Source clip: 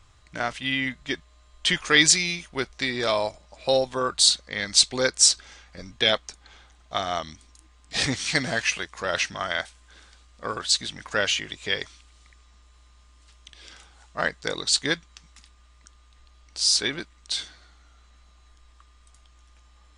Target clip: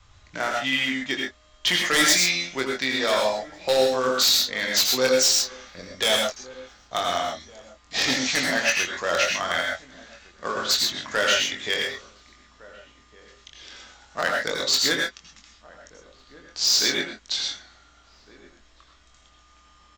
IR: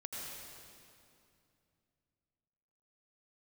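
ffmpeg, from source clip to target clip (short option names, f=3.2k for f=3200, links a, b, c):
-filter_complex "[0:a]adynamicequalizer=threshold=0.00501:dfrequency=350:dqfactor=2.9:tfrequency=350:tqfactor=2.9:attack=5:release=100:ratio=0.375:range=3.5:mode=cutabove:tftype=bell,acrossover=split=200[a][b];[a]acompressor=threshold=-53dB:ratio=6[c];[c][b]amix=inputs=2:normalize=0,asoftclip=type=tanh:threshold=-8dB,aresample=16000,acrusher=bits=4:mode=log:mix=0:aa=0.000001,aresample=44100,aeval=exprs='0.178*(abs(mod(val(0)/0.178+3,4)-2)-1)':c=same,asplit=2[d][e];[e]adelay=23,volume=-6dB[f];[d][f]amix=inputs=2:normalize=0,asplit=2[g][h];[h]adelay=1458,volume=-20dB,highshelf=f=4k:g=-32.8[i];[g][i]amix=inputs=2:normalize=0[j];[1:a]atrim=start_sample=2205,atrim=end_sample=6174[k];[j][k]afir=irnorm=-1:irlink=0,volume=6.5dB"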